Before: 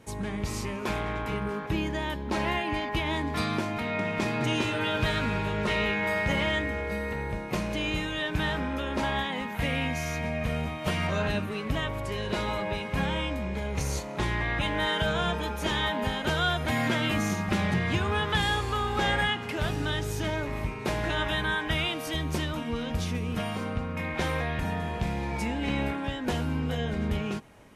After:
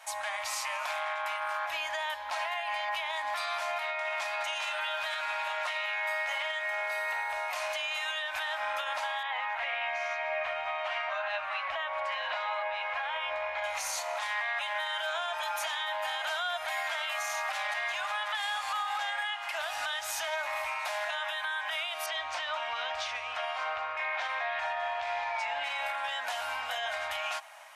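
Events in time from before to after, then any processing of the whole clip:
0:09.23–0:13.64: low-pass filter 2,700 Hz
0:17.34–0:18.05: delay throw 540 ms, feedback 35%, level −7.5 dB
0:22.06–0:25.64: high-frequency loss of the air 130 metres
whole clip: elliptic high-pass filter 660 Hz, stop band 40 dB; downward compressor 6 to 1, threshold −36 dBFS; brickwall limiter −33 dBFS; level +8.5 dB

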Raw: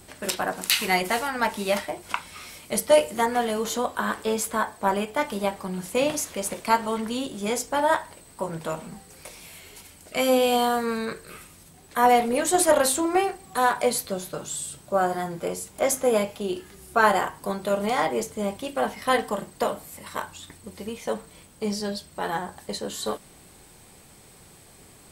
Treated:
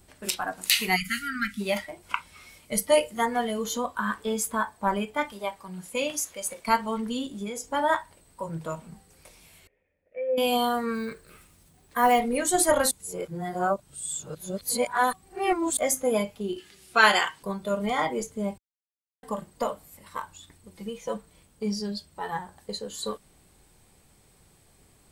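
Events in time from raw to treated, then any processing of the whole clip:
0:00.96–0:01.61: time-frequency box erased 290–1,200 Hz
0:05.32–0:06.68: low-shelf EQ 360 Hz −8 dB
0:07.28–0:07.73: downward compressor 5 to 1, threshold −28 dBFS
0:09.67–0:10.38: formant resonators in series e
0:10.94–0:12.20: log-companded quantiser 6 bits
0:12.91–0:15.77: reverse
0:16.58–0:17.43: meter weighting curve D
0:18.58–0:19.23: silence
0:20.75–0:21.17: comb filter 6 ms
whole clip: dynamic equaliser 490 Hz, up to −4 dB, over −33 dBFS, Q 0.71; noise reduction from a noise print of the clip's start 10 dB; low-shelf EQ 84 Hz +9.5 dB

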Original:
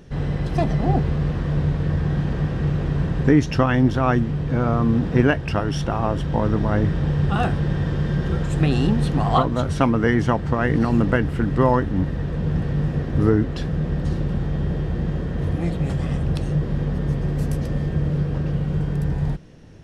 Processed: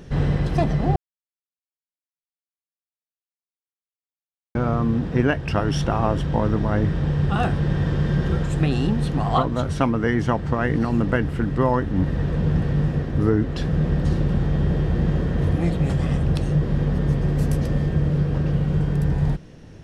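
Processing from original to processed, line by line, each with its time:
0:00.96–0:04.55: silence
whole clip: speech leveller 0.5 s

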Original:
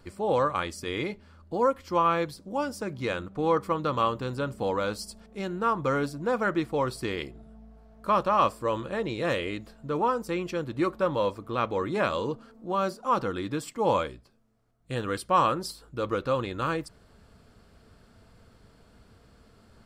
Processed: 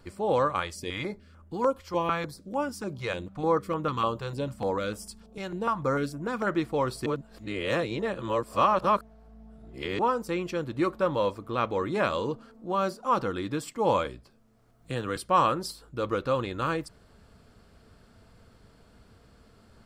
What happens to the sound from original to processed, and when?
0:00.60–0:06.47: notch on a step sequencer 6.7 Hz 270–4,300 Hz
0:07.06–0:09.99: reverse
0:14.05–0:15.16: multiband upward and downward compressor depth 40%

